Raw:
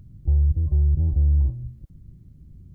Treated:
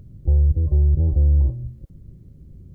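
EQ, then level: peaking EQ 480 Hz +11 dB 0.83 oct; +2.5 dB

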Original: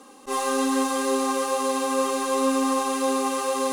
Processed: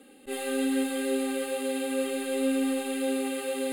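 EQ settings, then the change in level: static phaser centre 2.5 kHz, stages 4; -1.5 dB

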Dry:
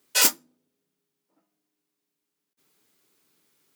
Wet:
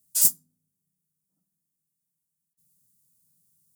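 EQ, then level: FFT filter 170 Hz 0 dB, 320 Hz -25 dB, 2.5 kHz -30 dB, 9.2 kHz -1 dB, 13 kHz -3 dB; +5.0 dB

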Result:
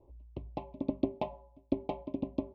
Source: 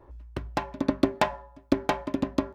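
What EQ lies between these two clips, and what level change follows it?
Butterworth band-stop 1.6 kHz, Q 0.58; four-pole ladder low-pass 2.8 kHz, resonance 35%; 0.0 dB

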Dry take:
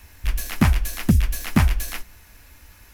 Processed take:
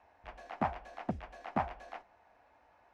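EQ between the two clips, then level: band-pass filter 730 Hz, Q 3.6; distance through air 88 m; +2.0 dB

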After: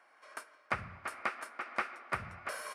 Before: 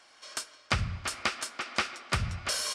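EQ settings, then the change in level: high-pass 710 Hz 6 dB/octave; treble shelf 2.4 kHz -11 dB; high-order bell 4.8 kHz -12.5 dB; +1.0 dB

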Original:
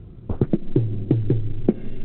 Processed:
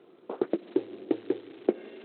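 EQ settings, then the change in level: high-pass 360 Hz 24 dB/octave; 0.0 dB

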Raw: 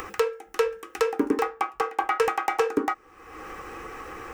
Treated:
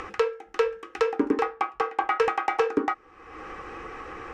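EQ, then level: low-pass 4.6 kHz 12 dB/octave; 0.0 dB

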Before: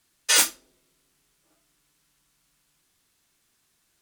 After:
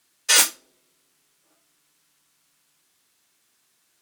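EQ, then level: high-pass 290 Hz 6 dB/octave; +3.0 dB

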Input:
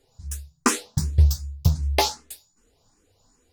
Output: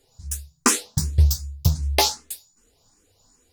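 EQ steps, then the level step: treble shelf 3.7 kHz +7 dB; 0.0 dB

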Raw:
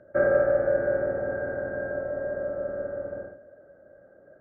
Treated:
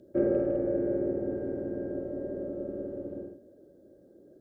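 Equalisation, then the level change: FFT filter 130 Hz 0 dB, 360 Hz +11 dB, 610 Hz -10 dB, 980 Hz -9 dB, 1.5 kHz -22 dB, 3.4 kHz +12 dB; -2.0 dB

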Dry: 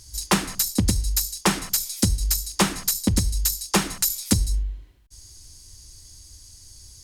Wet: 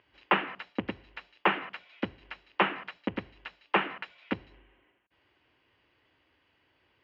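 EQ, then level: high-pass 430 Hz 12 dB/octave; Chebyshev low-pass 2.9 kHz, order 5; 0.0 dB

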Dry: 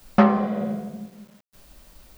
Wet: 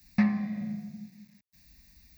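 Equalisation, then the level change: high-pass 47 Hz; high-order bell 720 Hz -15.5 dB; static phaser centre 2.1 kHz, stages 8; -3.5 dB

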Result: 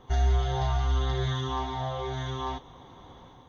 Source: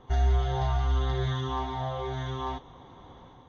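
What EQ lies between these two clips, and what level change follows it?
treble shelf 4.5 kHz +8 dB; 0.0 dB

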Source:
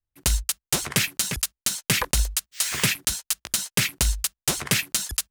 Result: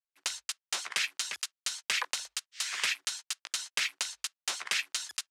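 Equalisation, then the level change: high-pass 980 Hz 12 dB/octave; low-pass 6.1 kHz 12 dB/octave; -5.0 dB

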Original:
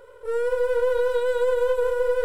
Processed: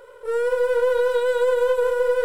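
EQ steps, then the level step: bass shelf 240 Hz -9 dB; +4.0 dB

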